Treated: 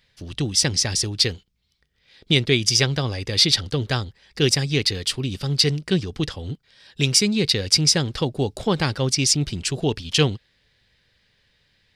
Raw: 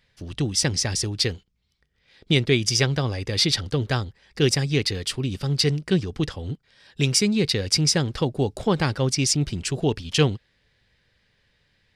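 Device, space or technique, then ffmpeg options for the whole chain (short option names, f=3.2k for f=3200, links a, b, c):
presence and air boost: -af "equalizer=f=3.9k:t=o:w=1.3:g=4.5,highshelf=f=9.5k:g=4.5"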